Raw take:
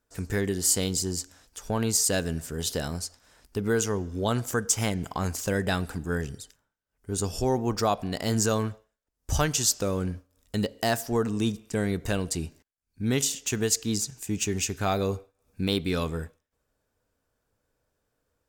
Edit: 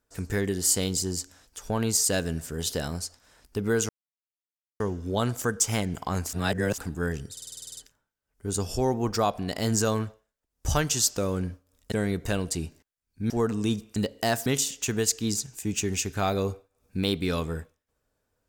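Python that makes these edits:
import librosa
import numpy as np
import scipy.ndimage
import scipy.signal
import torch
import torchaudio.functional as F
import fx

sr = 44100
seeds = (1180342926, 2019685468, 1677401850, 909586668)

y = fx.edit(x, sr, fx.insert_silence(at_s=3.89, length_s=0.91),
    fx.reverse_span(start_s=5.42, length_s=0.45),
    fx.stutter(start_s=6.41, slice_s=0.05, count=10),
    fx.swap(start_s=10.56, length_s=0.5, other_s=11.72, other_length_s=1.38), tone=tone)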